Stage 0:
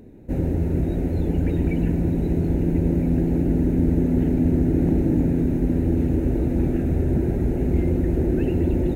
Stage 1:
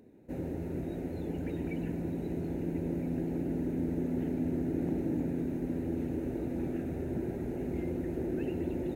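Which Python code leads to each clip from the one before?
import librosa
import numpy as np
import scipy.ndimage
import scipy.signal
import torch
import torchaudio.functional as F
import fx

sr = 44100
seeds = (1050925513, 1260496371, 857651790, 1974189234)

y = fx.highpass(x, sr, hz=260.0, slope=6)
y = F.gain(torch.from_numpy(y), -8.5).numpy()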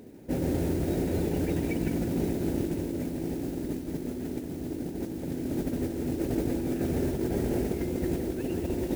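y = fx.over_compress(x, sr, threshold_db=-36.0, ratio=-0.5)
y = fx.mod_noise(y, sr, seeds[0], snr_db=20)
y = y + 10.0 ** (-8.0 / 20.0) * np.pad(y, (int(165 * sr / 1000.0), 0))[:len(y)]
y = F.gain(torch.from_numpy(y), 6.5).numpy()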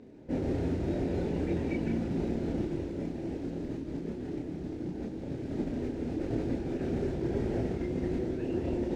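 y = fx.chorus_voices(x, sr, voices=6, hz=0.48, base_ms=30, depth_ms=4.8, mix_pct=45)
y = fx.air_absorb(y, sr, metres=130.0)
y = F.gain(torch.from_numpy(y), 1.0).numpy()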